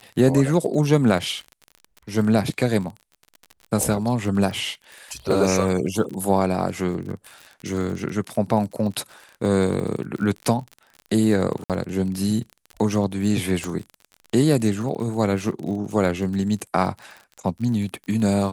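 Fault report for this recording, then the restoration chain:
crackle 40/s -30 dBFS
3.83 pop
11.64–11.7 gap 57 ms
13.64 pop -14 dBFS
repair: de-click; interpolate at 11.64, 57 ms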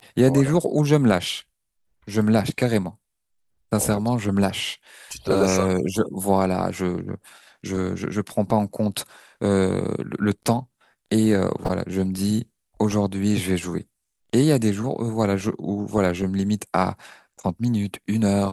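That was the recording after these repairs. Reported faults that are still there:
13.64 pop

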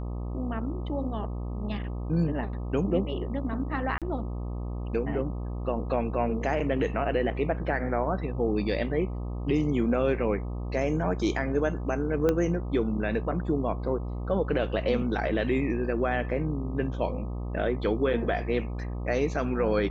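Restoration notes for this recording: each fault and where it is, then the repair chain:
buzz 60 Hz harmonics 21 -33 dBFS
3.98–4.02 gap 37 ms
12.29 pop -13 dBFS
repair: de-click; de-hum 60 Hz, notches 21; interpolate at 3.98, 37 ms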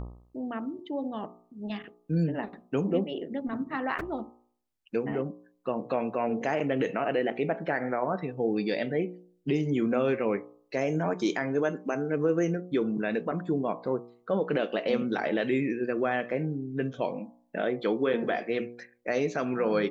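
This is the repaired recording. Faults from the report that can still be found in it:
12.29 pop

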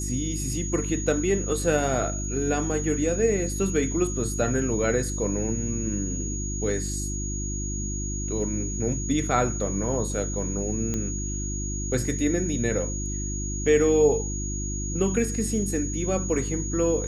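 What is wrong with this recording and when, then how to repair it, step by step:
hum 50 Hz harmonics 7 -31 dBFS
tone 6700 Hz -33 dBFS
10.94 pop -16 dBFS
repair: de-click; notch 6700 Hz, Q 30; de-hum 50 Hz, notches 7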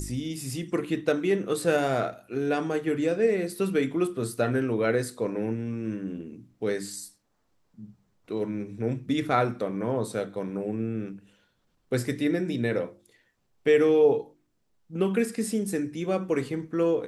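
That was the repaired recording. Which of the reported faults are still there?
none

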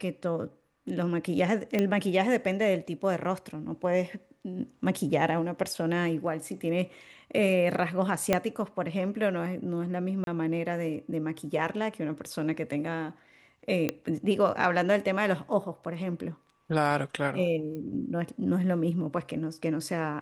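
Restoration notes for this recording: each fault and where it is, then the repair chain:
1.79 pop -14 dBFS
8.33 pop -9 dBFS
10.24–10.27 gap 32 ms
13.89 pop -13 dBFS
17.75 pop -28 dBFS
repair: de-click; interpolate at 10.24, 32 ms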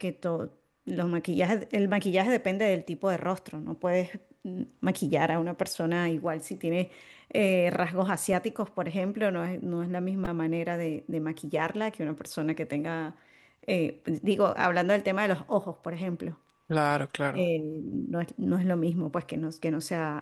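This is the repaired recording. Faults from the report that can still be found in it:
8.33 pop

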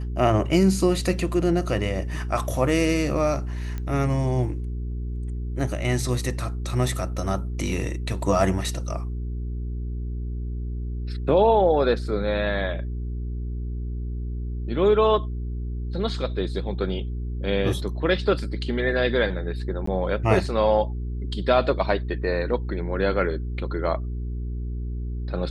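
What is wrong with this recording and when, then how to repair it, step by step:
hum 60 Hz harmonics 7 -29 dBFS
3.78 pop -19 dBFS
19.86–19.87 gap 14 ms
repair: de-click; de-hum 60 Hz, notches 7; interpolate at 19.86, 14 ms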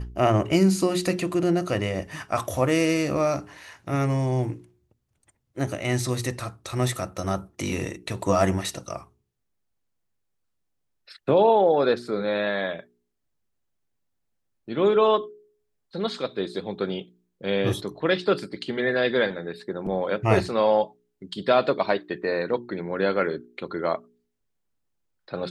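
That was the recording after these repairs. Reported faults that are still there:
none

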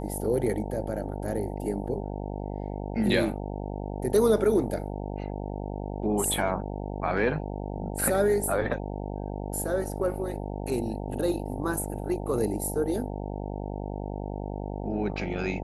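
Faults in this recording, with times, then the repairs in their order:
buzz 50 Hz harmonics 18 -34 dBFS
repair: de-hum 50 Hz, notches 18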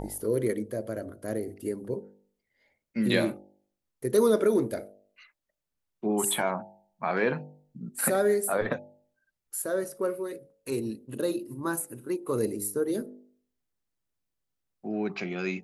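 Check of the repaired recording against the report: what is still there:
none

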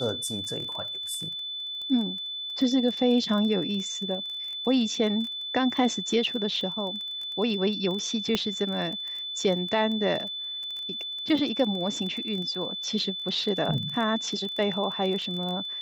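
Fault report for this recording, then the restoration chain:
crackle 20/s -32 dBFS
tone 3500 Hz -32 dBFS
8.35 pop -11 dBFS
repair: de-click; notch 3500 Hz, Q 30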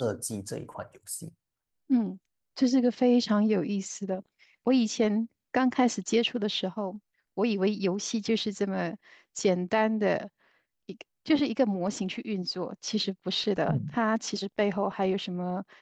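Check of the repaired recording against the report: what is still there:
none

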